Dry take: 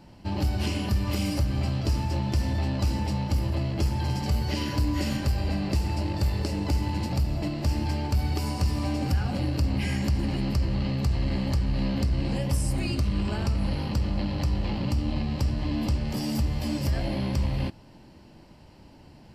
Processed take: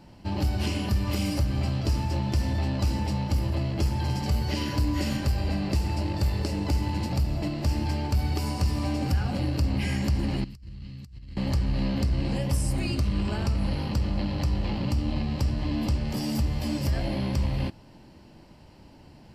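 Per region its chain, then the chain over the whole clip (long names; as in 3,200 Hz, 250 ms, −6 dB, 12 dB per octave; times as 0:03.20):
0:10.44–0:11.37: guitar amp tone stack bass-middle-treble 6-0-2 + compressor whose output falls as the input rises −40 dBFS, ratio −0.5
whole clip: no processing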